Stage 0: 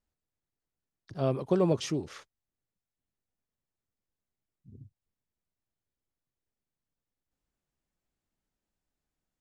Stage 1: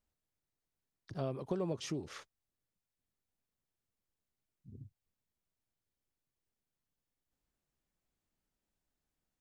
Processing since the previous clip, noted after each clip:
downward compressor 3 to 1, threshold −35 dBFS, peak gain reduction 11 dB
level −1 dB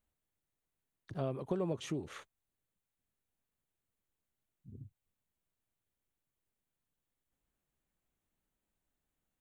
parametric band 5,100 Hz −13 dB 0.38 octaves
level +1 dB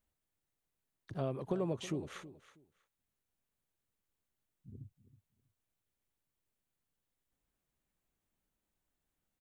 repeating echo 322 ms, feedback 20%, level −15.5 dB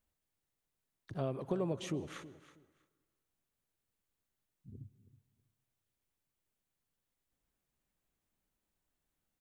convolution reverb RT60 1.6 s, pre-delay 118 ms, DRR 19.5 dB

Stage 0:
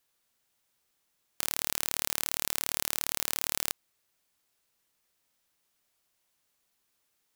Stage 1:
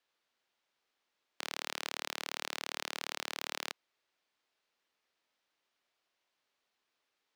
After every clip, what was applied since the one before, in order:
three-way crossover with the lows and the highs turned down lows −14 dB, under 250 Hz, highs −20 dB, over 5,100 Hz
level −1 dB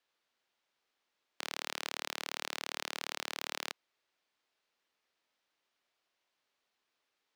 no processing that can be heard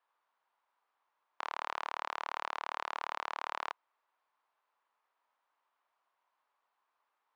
resonant band-pass 1,000 Hz, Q 3
level +11 dB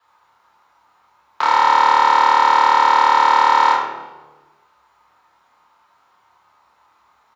double-tracking delay 29 ms −3 dB
convolution reverb RT60 1.2 s, pre-delay 3 ms, DRR −6.5 dB
level +8 dB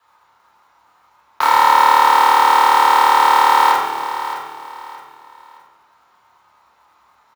one scale factor per block 5 bits
repeating echo 619 ms, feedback 30%, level −11.5 dB
level +2 dB

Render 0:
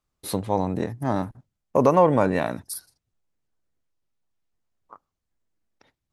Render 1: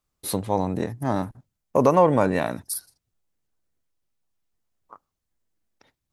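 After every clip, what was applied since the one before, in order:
high-shelf EQ 6,500 Hz +5.5 dB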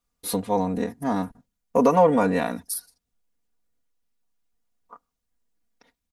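comb filter 4.2 ms, depth 89%
level −2.5 dB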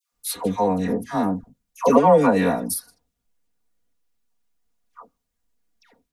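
all-pass dispersion lows, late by 125 ms, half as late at 1,100 Hz
level +3 dB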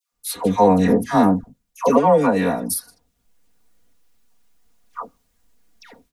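automatic gain control gain up to 14 dB
level −1 dB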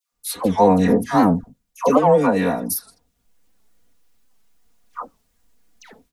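wow of a warped record 78 rpm, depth 160 cents

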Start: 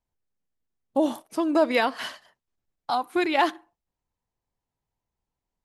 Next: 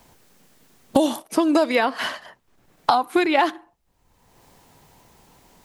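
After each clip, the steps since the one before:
multiband upward and downward compressor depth 100%
level +4.5 dB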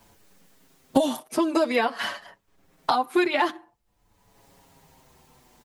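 barber-pole flanger 6.6 ms −0.49 Hz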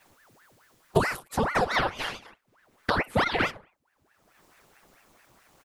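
ring modulator whose carrier an LFO sweeps 940 Hz, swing 90%, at 4.6 Hz

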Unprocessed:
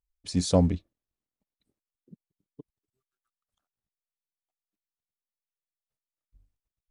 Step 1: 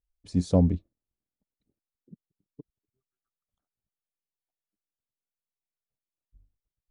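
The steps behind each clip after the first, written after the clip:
tilt shelving filter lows +7 dB, about 860 Hz
level −5 dB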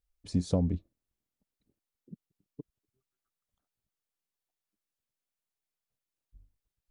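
downward compressor 6 to 1, threshold −26 dBFS, peak gain reduction 10.5 dB
level +2 dB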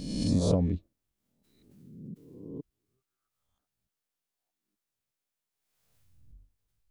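peak hold with a rise ahead of every peak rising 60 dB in 0.69 s
background raised ahead of every attack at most 46 dB per second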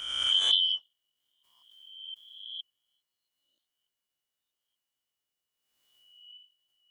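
band-splitting scrambler in four parts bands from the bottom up 3412

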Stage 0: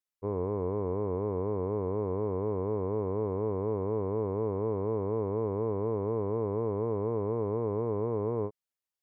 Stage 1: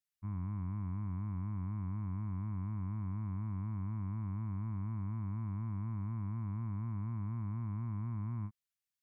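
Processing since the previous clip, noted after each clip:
Chebyshev band-stop filter 180–1,200 Hz, order 2
parametric band 900 Hz −10 dB 0.84 octaves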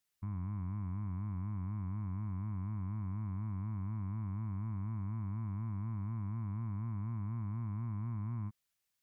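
brickwall limiter −40.5 dBFS, peak gain reduction 8.5 dB
level +7.5 dB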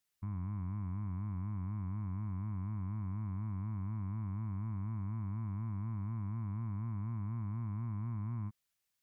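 no processing that can be heard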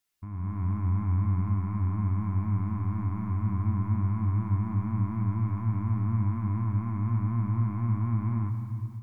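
on a send at −3 dB: convolution reverb RT60 2.9 s, pre-delay 3 ms
on the sum: automatic gain control gain up to 8.5 dB
level +1.5 dB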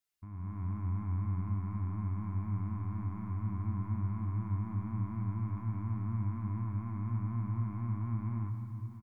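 single-tap delay 588 ms −16 dB
level −7.5 dB

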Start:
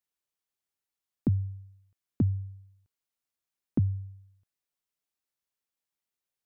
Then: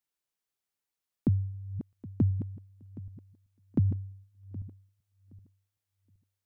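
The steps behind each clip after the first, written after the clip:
feedback delay that plays each chunk backwards 385 ms, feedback 45%, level −12 dB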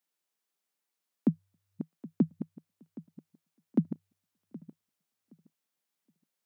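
Chebyshev high-pass filter 160 Hz, order 6
level +3.5 dB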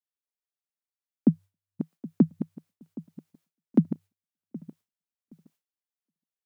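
noise gate with hold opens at −57 dBFS
level +6 dB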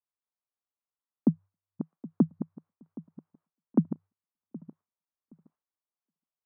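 low-pass with resonance 1,100 Hz, resonance Q 2.2
level −3.5 dB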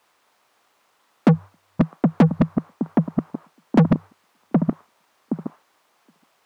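mid-hump overdrive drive 42 dB, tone 1,300 Hz, clips at −11 dBFS
level +6 dB

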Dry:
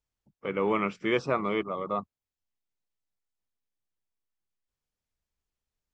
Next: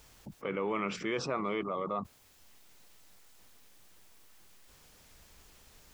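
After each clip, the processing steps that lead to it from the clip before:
low-shelf EQ 140 Hz −5 dB
envelope flattener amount 70%
level −8.5 dB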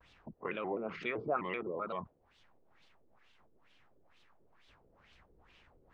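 auto-filter low-pass sine 2.2 Hz 440–3,300 Hz
harmonic and percussive parts rebalanced percussive +5 dB
pitch modulation by a square or saw wave square 3.9 Hz, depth 160 cents
level −8 dB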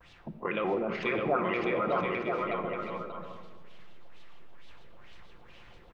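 bouncing-ball delay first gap 610 ms, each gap 0.6×, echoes 5
rectangular room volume 1,900 cubic metres, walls mixed, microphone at 0.85 metres
in parallel at +2 dB: brickwall limiter −29 dBFS, peak gain reduction 9 dB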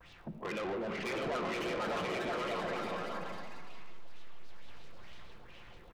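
soft clipping −34 dBFS, distortion −7 dB
surface crackle 85 per second −59 dBFS
delay with pitch and tempo change per echo 769 ms, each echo +4 semitones, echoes 3, each echo −6 dB

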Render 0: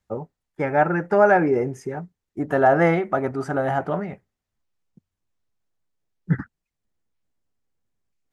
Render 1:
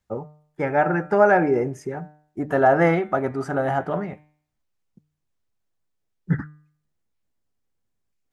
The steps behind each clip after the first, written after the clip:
hum removal 150.8 Hz, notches 27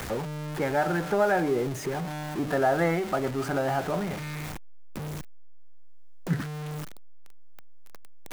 converter with a step at zero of −25.5 dBFS
multiband upward and downward compressor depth 40%
level −6.5 dB

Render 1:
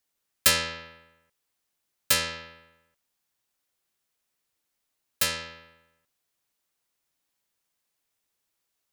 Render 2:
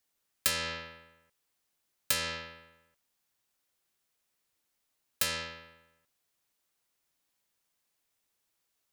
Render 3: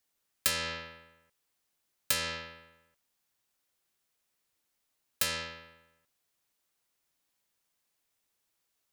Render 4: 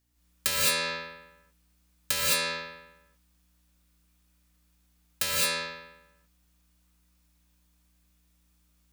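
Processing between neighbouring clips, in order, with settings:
downward compressor 6 to 1, threshold −26 dBFS, peak gain reduction 11 dB
no processing that can be heard
mains hum 60 Hz, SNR 35 dB; reverb whose tail is shaped and stops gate 240 ms rising, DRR −6 dB

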